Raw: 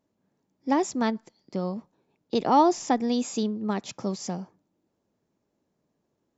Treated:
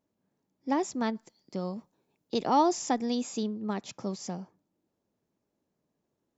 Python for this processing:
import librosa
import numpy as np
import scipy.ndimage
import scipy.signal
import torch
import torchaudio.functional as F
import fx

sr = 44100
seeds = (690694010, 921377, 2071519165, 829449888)

y = fx.high_shelf(x, sr, hz=6000.0, db=10.0, at=(1.15, 3.15))
y = y * 10.0 ** (-4.5 / 20.0)